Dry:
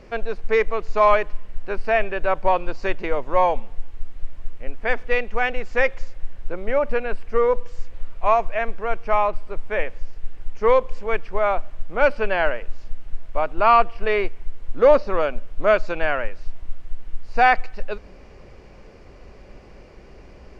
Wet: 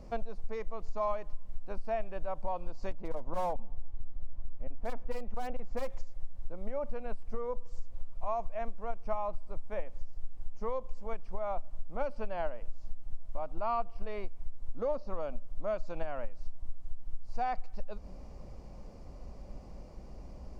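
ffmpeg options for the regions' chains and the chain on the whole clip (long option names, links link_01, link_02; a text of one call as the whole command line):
ffmpeg -i in.wav -filter_complex "[0:a]asettb=1/sr,asplit=3[link_01][link_02][link_03];[link_01]atrim=end=2.914[link_04];[link_02]atrim=start=2.91:end=5.9,asetpts=PTS-STARTPTS,afade=type=in:duration=0.004:curve=qsin,afade=type=out:start_time=2.986:duration=0.004:curve=qsin,lowpass=frequency=1600:poles=1,asoftclip=type=hard:threshold=-17dB[link_05];[link_03]atrim=start=5.896[link_06];[link_04][link_05]acrossfade=duration=0.004:curve1=hsin:curve2=qsin[link_07];[link_07][link_06]acrossfade=duration=0.004:curve1=qsin:curve2=hsin,equalizer=frequency=2600:width=0.74:gain=-14,acompressor=threshold=-26dB:ratio=6,equalizer=frequency=100:width_type=o:width=0.67:gain=-4,equalizer=frequency=400:width_type=o:width=0.67:gain=-11,equalizer=frequency=1600:width_type=o:width=0.67:gain=-8" out.wav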